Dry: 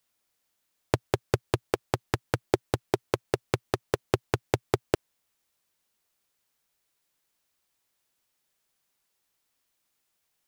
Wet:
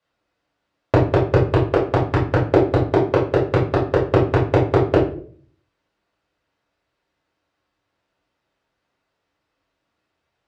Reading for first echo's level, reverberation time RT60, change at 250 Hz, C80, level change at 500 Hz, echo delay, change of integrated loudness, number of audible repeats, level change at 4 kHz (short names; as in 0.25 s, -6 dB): none, 0.50 s, +13.0 dB, 11.5 dB, +12.0 dB, none, +12.0 dB, none, +1.5 dB